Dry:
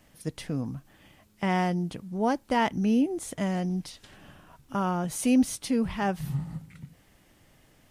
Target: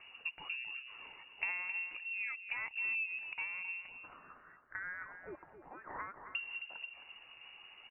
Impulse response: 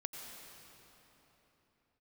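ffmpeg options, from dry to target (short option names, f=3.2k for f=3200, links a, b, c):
-filter_complex "[0:a]asettb=1/sr,asplit=3[a][b][c];[a]atrim=end=3.884[d];[b]atrim=start=3.88:end=6.35,asetpts=PTS-STARTPTS,afade=t=in:d=0.004:c=qsin,afade=t=out:st=2.466:d=0.004:c=qsin,highpass=f=1.4k:w=0.5412,highpass=f=1.4k:w=1.3066[e];[c]atrim=start=6.346[f];[d][e]acrossfade=d=0.004:c1=hsin:c2=qsin[g];[g][f]acrossfade=d=0.004:c1=qsin:c2=hsin,acompressor=threshold=-41dB:ratio=8,aphaser=in_gain=1:out_gain=1:delay=2.7:decay=0.29:speed=0.67:type=triangular,aecho=1:1:266|532|798:0.316|0.0569|0.0102,lowpass=f=2.5k:t=q:w=0.5098,lowpass=f=2.5k:t=q:w=0.6013,lowpass=f=2.5k:t=q:w=0.9,lowpass=f=2.5k:t=q:w=2.563,afreqshift=-2900,volume=2.5dB"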